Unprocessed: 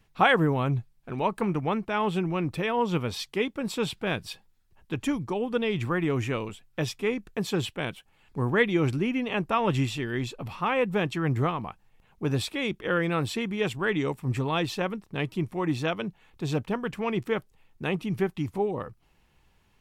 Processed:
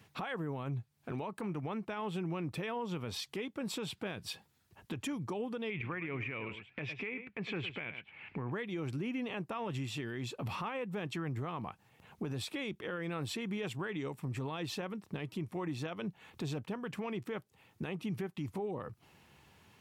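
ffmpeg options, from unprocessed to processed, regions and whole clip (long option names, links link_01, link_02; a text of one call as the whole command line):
ffmpeg -i in.wav -filter_complex "[0:a]asettb=1/sr,asplit=3[link_01][link_02][link_03];[link_01]atrim=end=5.704[link_04];[link_02]atrim=start=5.7:end=8.52,asetpts=PTS-STARTPTS,afade=type=in:duration=0.004:curve=qsin,afade=type=out:start_time=2.816:duration=0.004:curve=qsin,lowpass=frequency=2300:width_type=q:width=5.6,aecho=1:1:105:0.158,atrim=end_sample=124362[link_05];[link_03]atrim=start=8.516[link_06];[link_04][link_05]acrossfade=duration=0.004:curve1=hsin:curve2=qsin[link_07];[link_07][link_06]acrossfade=duration=0.004:curve1=qsin:curve2=hsin,highpass=frequency=83:width=0.5412,highpass=frequency=83:width=1.3066,acompressor=threshold=-39dB:ratio=8,alimiter=level_in=11.5dB:limit=-24dB:level=0:latency=1:release=33,volume=-11.5dB,volume=5.5dB" out.wav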